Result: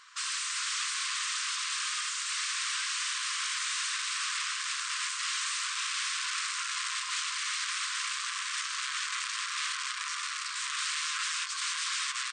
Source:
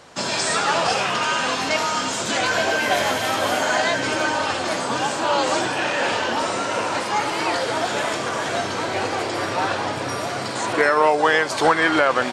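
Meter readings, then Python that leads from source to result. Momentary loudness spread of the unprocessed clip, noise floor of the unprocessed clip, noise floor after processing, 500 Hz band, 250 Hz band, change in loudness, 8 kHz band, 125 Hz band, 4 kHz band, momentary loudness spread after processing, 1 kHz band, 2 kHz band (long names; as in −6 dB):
7 LU, −27 dBFS, −37 dBFS, below −40 dB, below −40 dB, −10.0 dB, −2.0 dB, below −40 dB, −5.5 dB, 2 LU, −18.0 dB, −11.5 dB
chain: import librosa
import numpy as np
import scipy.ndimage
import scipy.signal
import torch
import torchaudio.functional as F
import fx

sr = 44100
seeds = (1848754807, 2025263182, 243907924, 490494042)

y = fx.dynamic_eq(x, sr, hz=1500.0, q=0.79, threshold_db=-29.0, ratio=4.0, max_db=-4)
y = (np.mod(10.0 ** (21.0 / 20.0) * y + 1.0, 2.0) - 1.0) / 10.0 ** (21.0 / 20.0)
y = fx.brickwall_bandpass(y, sr, low_hz=1000.0, high_hz=9200.0)
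y = y * librosa.db_to_amplitude(-5.0)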